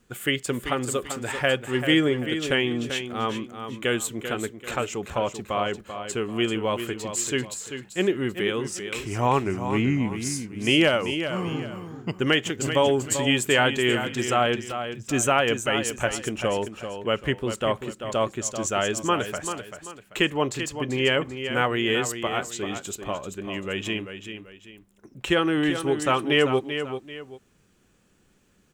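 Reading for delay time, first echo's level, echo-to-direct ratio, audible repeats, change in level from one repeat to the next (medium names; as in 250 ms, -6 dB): 389 ms, -9.0 dB, -8.5 dB, 2, -9.5 dB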